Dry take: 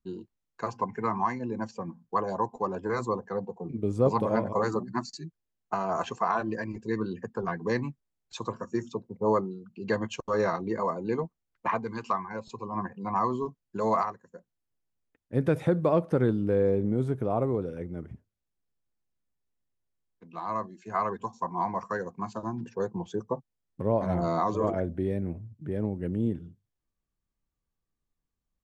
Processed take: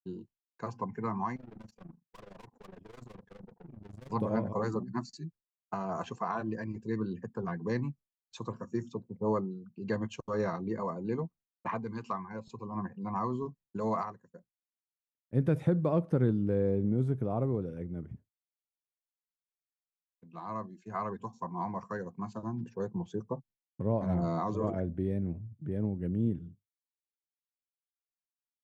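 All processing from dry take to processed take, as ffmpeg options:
ffmpeg -i in.wav -filter_complex "[0:a]asettb=1/sr,asplit=3[link_01][link_02][link_03];[link_01]atrim=end=1.364[link_04];[link_02]atrim=start=1.36:end=4.12,asetpts=PTS-STARTPTS,afade=type=in:duration=0.004:curve=qsin,afade=type=out:start_time=2.756:duration=0.004:curve=qsin,aeval=exprs='(tanh(112*val(0)+0.6)-tanh(0.6))/112':channel_layout=same,tremolo=f=24:d=0.889[link_05];[link_03]atrim=start=4.116[link_06];[link_04][link_05]acrossfade=duration=0.004:curve1=hsin:curve2=qsin[link_07];[link_07][link_06]acrossfade=duration=0.004:curve1=qsin:curve2=hsin,agate=range=-33dB:threshold=-48dB:ratio=3:detection=peak,equalizer=frequency=140:width_type=o:width=2.2:gain=8.5,volume=-8dB" out.wav

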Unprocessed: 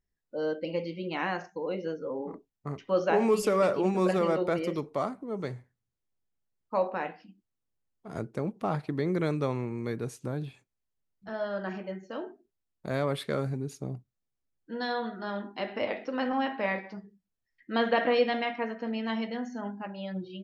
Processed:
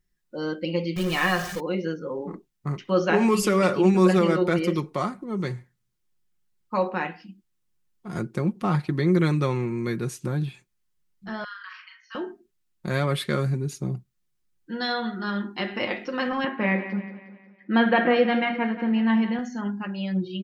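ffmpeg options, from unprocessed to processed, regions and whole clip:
ffmpeg -i in.wav -filter_complex "[0:a]asettb=1/sr,asplit=3[link_01][link_02][link_03];[link_01]atrim=end=0.964[link_04];[link_02]atrim=start=0.96:end=1.6,asetpts=PTS-STARTPTS,afade=type=in:duration=0.004:curve=qsin,afade=type=out:start_time=0.636:duration=0.004:curve=qsin,aeval=exprs='val(0)+0.5*0.0141*sgn(val(0))':channel_layout=same,aecho=1:1:1.7:0.52,atrim=end_sample=28224[link_05];[link_03]atrim=start=1.596[link_06];[link_04][link_05]acrossfade=duration=0.004:curve1=hsin:curve2=qsin[link_07];[link_07][link_06]acrossfade=duration=0.004:curve1=qsin:curve2=hsin,asettb=1/sr,asplit=3[link_08][link_09][link_10];[link_08]atrim=end=11.444[link_11];[link_09]atrim=start=11.44:end=12.15,asetpts=PTS-STARTPTS,afade=type=in:duration=0.004:curve=qsin,afade=type=out:start_time=0.706:duration=0.004:curve=qsin,acompressor=threshold=-36dB:ratio=3:attack=3.2:release=140:knee=1:detection=peak,asuperpass=centerf=2500:order=20:qfactor=0.52,asplit=2[link_12][link_13];[link_13]adelay=40,volume=-5.5dB[link_14];[link_12][link_14]amix=inputs=2:normalize=0,atrim=end_sample=31311[link_15];[link_10]atrim=start=12.146[link_16];[link_11][link_15]acrossfade=duration=0.004:curve1=hsin:curve2=qsin[link_17];[link_17][link_16]acrossfade=duration=0.004:curve1=qsin:curve2=hsin,asettb=1/sr,asplit=3[link_18][link_19][link_20];[link_18]atrim=end=16.444[link_21];[link_19]atrim=start=16.44:end=19.39,asetpts=PTS-STARTPTS,afade=type=in:duration=0.004:curve=qsin,afade=type=out:start_time=2.946:duration=0.004:curve=qsin,highpass=190,lowpass=2400,lowshelf=frequency=310:gain=8.5,aecho=1:1:180|360|540|720|900:0.224|0.107|0.0516|0.0248|0.0119,atrim=end_sample=130095[link_22];[link_20]atrim=start=19.386[link_23];[link_21][link_22]acrossfade=duration=0.004:curve1=hsin:curve2=qsin[link_24];[link_24][link_23]acrossfade=duration=0.004:curve1=qsin:curve2=hsin,equalizer=frequency=620:width=1.4:gain=-9,aecho=1:1:5.6:0.5,volume=7.5dB" out.wav

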